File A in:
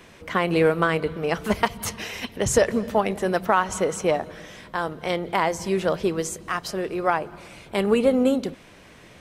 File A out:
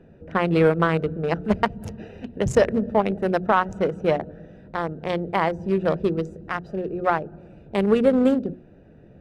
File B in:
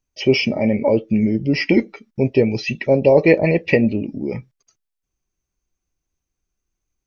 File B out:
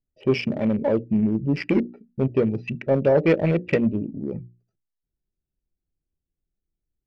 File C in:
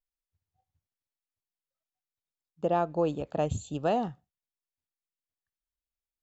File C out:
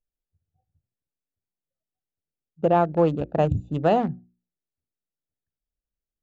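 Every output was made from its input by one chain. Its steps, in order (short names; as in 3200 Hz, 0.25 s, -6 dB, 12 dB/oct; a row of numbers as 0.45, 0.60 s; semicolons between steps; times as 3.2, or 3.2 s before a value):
Wiener smoothing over 41 samples; LPF 3400 Hz 6 dB/oct; bell 160 Hz +3 dB 0.77 oct; notches 60/120/180/240/300/360 Hz; soft clip -5.5 dBFS; match loudness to -23 LUFS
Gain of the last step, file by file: +2.5, -3.5, +8.0 dB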